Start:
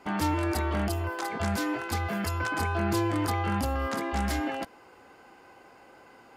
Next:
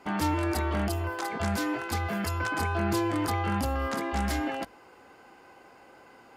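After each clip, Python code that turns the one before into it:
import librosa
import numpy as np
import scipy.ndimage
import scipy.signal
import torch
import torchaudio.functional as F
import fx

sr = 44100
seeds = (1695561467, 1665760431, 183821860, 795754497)

y = fx.hum_notches(x, sr, base_hz=50, count=2)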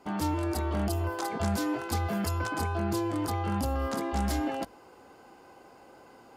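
y = fx.peak_eq(x, sr, hz=2000.0, db=-7.5, octaves=1.4)
y = fx.rider(y, sr, range_db=10, speed_s=0.5)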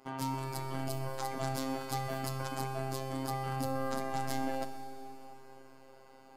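y = fx.robotise(x, sr, hz=133.0)
y = fx.rev_schroeder(y, sr, rt60_s=3.5, comb_ms=29, drr_db=7.0)
y = F.gain(torch.from_numpy(y), -2.5).numpy()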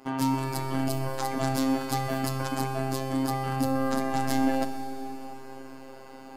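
y = fx.rider(x, sr, range_db=4, speed_s=2.0)
y = fx.small_body(y, sr, hz=(270.0, 1700.0, 2700.0), ring_ms=45, db=6)
y = F.gain(torch.from_numpy(y), 6.5).numpy()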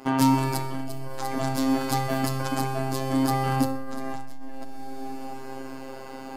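y = fx.transformer_sat(x, sr, knee_hz=330.0)
y = F.gain(torch.from_numpy(y), 7.0).numpy()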